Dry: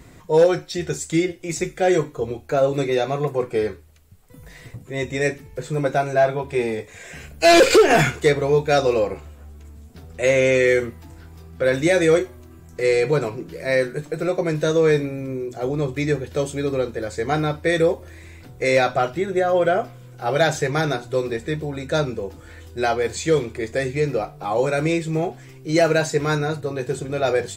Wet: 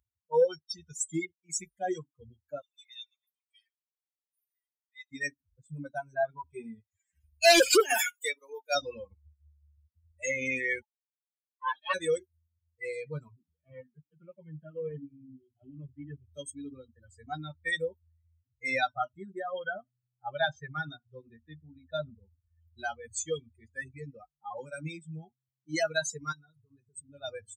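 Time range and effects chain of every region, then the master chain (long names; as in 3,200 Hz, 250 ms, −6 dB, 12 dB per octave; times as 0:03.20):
0:02.61–0:05.11: inverse Chebyshev high-pass filter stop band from 500 Hz, stop band 60 dB + repeating echo 132 ms, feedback 57%, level −15 dB
0:07.80–0:08.75: Bessel high-pass filter 380 Hz, order 4 + high-shelf EQ 9,300 Hz +7.5 dB
0:10.82–0:11.94: lower of the sound and its delayed copy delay 1.2 ms + Chebyshev band-pass filter 390–4,300 Hz, order 3 + multiband upward and downward expander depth 70%
0:13.30–0:16.28: variable-slope delta modulation 16 kbit/s + phaser whose notches keep moving one way falling 2 Hz
0:19.48–0:22.23: low-pass filter 4,300 Hz + single-tap delay 100 ms −20 dB
0:26.32–0:27.11: notch filter 560 Hz, Q 16 + downward compressor 4 to 1, threshold −26 dBFS
whole clip: spectral dynamics exaggerated over time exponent 3; spectral tilt +2.5 dB per octave; notch filter 2,900 Hz, Q 26; level −3 dB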